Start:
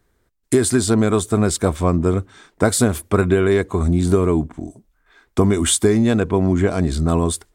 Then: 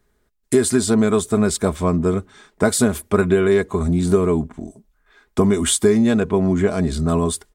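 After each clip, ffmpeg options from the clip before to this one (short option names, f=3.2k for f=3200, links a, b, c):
-af "aecho=1:1:4.8:0.43,volume=-1.5dB"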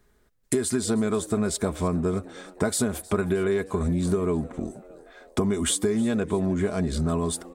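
-filter_complex "[0:a]acompressor=threshold=-26dB:ratio=3,asplit=5[a][b][c][d][e];[b]adelay=312,afreqshift=93,volume=-20.5dB[f];[c]adelay=624,afreqshift=186,volume=-25.7dB[g];[d]adelay=936,afreqshift=279,volume=-30.9dB[h];[e]adelay=1248,afreqshift=372,volume=-36.1dB[i];[a][f][g][h][i]amix=inputs=5:normalize=0,volume=1.5dB"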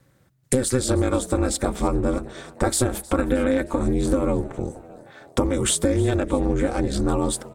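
-af "bandreject=f=50:t=h:w=6,bandreject=f=100:t=h:w=6,bandreject=f=150:t=h:w=6,bandreject=f=200:t=h:w=6,aeval=exprs='val(0)*sin(2*PI*130*n/s)':c=same,volume=6.5dB"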